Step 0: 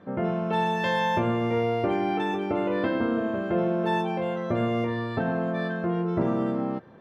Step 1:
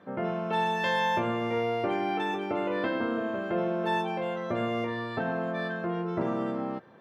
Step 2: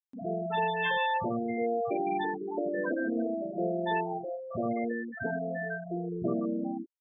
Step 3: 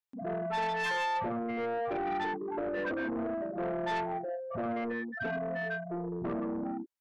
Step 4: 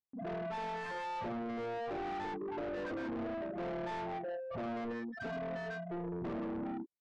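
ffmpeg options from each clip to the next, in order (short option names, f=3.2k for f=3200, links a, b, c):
-af "highpass=95,lowshelf=f=450:g=-7"
-filter_complex "[0:a]acrossover=split=200|720[a][b][c];[a]adelay=40[d];[b]adelay=70[e];[d][e][c]amix=inputs=3:normalize=0,afftfilt=real='re*gte(hypot(re,im),0.0891)':imag='im*gte(hypot(re,im),0.0891)':win_size=1024:overlap=0.75,acompressor=mode=upward:threshold=-44dB:ratio=2.5,volume=1.5dB"
-af "asoftclip=type=tanh:threshold=-30.5dB,equalizer=f=1.3k:t=o:w=2.1:g=3.5"
-af "aresample=11025,volume=34.5dB,asoftclip=hard,volume=-34.5dB,aresample=44100,adynamicsmooth=sensitivity=3.5:basefreq=750,volume=-1.5dB"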